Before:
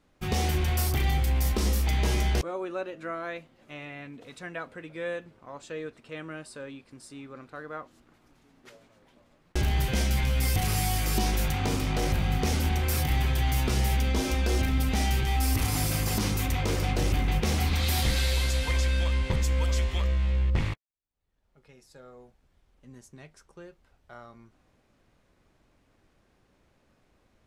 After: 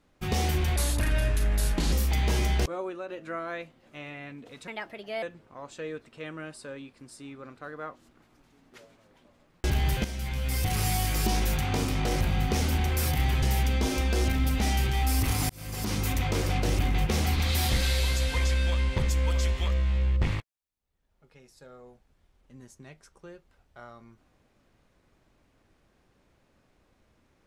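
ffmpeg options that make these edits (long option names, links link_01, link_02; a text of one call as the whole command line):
ffmpeg -i in.wav -filter_complex "[0:a]asplit=9[link_01][link_02][link_03][link_04][link_05][link_06][link_07][link_08][link_09];[link_01]atrim=end=0.764[link_10];[link_02]atrim=start=0.76:end=1.68,asetpts=PTS-STARTPTS,asetrate=34839,aresample=44100[link_11];[link_03]atrim=start=1.676:end=2.84,asetpts=PTS-STARTPTS,afade=type=out:start_time=0.904:duration=0.26:silence=0.446684[link_12];[link_04]atrim=start=2.84:end=4.434,asetpts=PTS-STARTPTS,afade=type=in:duration=0.004:curve=hsin:silence=0.446684[link_13];[link_05]atrim=start=4.43:end=5.14,asetpts=PTS-STARTPTS,asetrate=56889,aresample=44100,atrim=end_sample=24272,asetpts=PTS-STARTPTS[link_14];[link_06]atrim=start=5.136:end=9.96,asetpts=PTS-STARTPTS,afade=type=out:start_time=4.82:duration=0.004:curve=hsin:silence=0.251189[link_15];[link_07]atrim=start=9.96:end=13.342,asetpts=PTS-STARTPTS,afade=type=in:duration=0.8:silence=0.251189[link_16];[link_08]atrim=start=13.758:end=15.83,asetpts=PTS-STARTPTS,afade=type=out:start_time=2.068:duration=0.004:curve=hsin[link_17];[link_09]atrim=start=15.83,asetpts=PTS-STARTPTS,afade=type=in:duration=0.56[link_18];[link_10][link_11]acrossfade=duration=0.004:curve1=hsin:curve2=hsin[link_19];[link_12][link_13]concat=n=2:v=0:a=1[link_20];[link_19][link_20]acrossfade=duration=0.004:curve1=hsin:curve2=hsin[link_21];[link_21][link_14]acrossfade=duration=0.004:curve1=hsin:curve2=hsin[link_22];[link_15][link_16]concat=n=2:v=0:a=1[link_23];[link_22][link_23]acrossfade=duration=0.004:curve1=hsin:curve2=hsin[link_24];[link_17][link_18]concat=n=2:v=0:a=1[link_25];[link_24][link_25]acrossfade=duration=0.004:curve1=hsin:curve2=hsin" out.wav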